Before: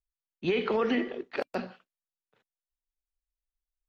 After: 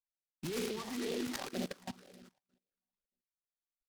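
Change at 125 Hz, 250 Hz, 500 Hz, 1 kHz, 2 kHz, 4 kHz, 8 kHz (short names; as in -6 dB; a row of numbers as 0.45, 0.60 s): -4.0 dB, -7.0 dB, -10.5 dB, -10.5 dB, -10.0 dB, -2.5 dB, n/a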